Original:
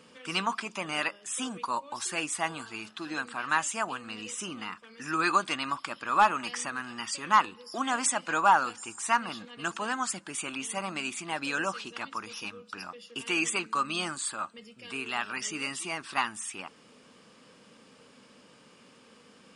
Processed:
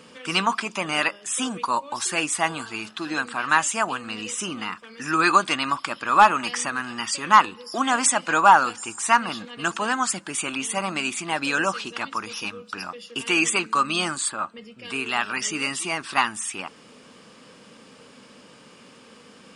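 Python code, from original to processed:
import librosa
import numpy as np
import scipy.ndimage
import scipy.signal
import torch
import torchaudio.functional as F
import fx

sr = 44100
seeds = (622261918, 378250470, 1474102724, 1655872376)

y = fx.high_shelf(x, sr, hz=fx.line((14.28, 3400.0), (14.84, 5700.0)), db=-12.0, at=(14.28, 14.84), fade=0.02)
y = y * 10.0 ** (7.5 / 20.0)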